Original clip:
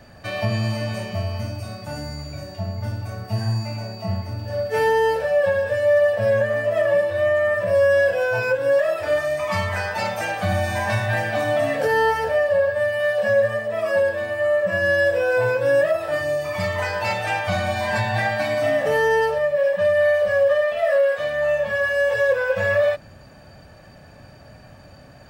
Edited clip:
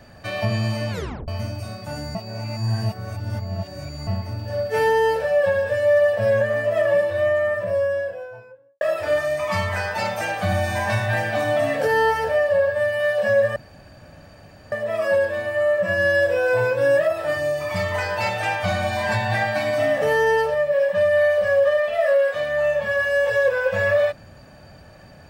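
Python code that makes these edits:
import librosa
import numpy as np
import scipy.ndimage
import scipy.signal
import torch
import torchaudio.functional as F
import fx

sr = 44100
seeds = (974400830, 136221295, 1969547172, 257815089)

y = fx.studio_fade_out(x, sr, start_s=7.04, length_s=1.77)
y = fx.edit(y, sr, fx.tape_stop(start_s=0.91, length_s=0.37),
    fx.reverse_span(start_s=2.15, length_s=1.92),
    fx.insert_room_tone(at_s=13.56, length_s=1.16), tone=tone)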